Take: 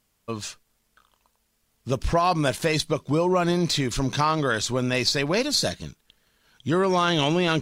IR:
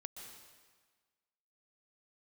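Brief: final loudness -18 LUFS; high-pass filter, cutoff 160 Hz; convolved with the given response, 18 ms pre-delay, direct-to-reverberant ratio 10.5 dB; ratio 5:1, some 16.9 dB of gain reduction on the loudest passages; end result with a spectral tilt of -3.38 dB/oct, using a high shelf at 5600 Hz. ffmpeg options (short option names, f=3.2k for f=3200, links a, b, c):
-filter_complex "[0:a]highpass=160,highshelf=f=5.6k:g=8,acompressor=threshold=-36dB:ratio=5,asplit=2[a][b];[1:a]atrim=start_sample=2205,adelay=18[c];[b][c]afir=irnorm=-1:irlink=0,volume=-6.5dB[d];[a][d]amix=inputs=2:normalize=0,volume=19.5dB"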